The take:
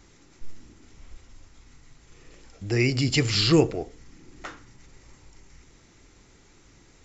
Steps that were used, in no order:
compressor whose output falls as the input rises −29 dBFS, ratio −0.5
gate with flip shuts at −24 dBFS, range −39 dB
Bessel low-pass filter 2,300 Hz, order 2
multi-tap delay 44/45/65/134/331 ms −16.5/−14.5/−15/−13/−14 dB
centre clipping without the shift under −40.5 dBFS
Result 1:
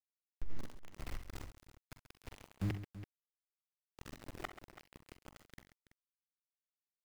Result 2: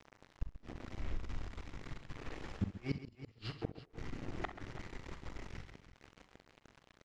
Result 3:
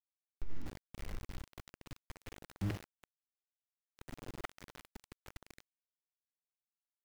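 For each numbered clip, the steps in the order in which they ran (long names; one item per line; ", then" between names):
gate with flip, then Bessel low-pass filter, then compressor whose output falls as the input rises, then centre clipping without the shift, then multi-tap delay
compressor whose output falls as the input rises, then centre clipping without the shift, then Bessel low-pass filter, then gate with flip, then multi-tap delay
gate with flip, then Bessel low-pass filter, then compressor whose output falls as the input rises, then multi-tap delay, then centre clipping without the shift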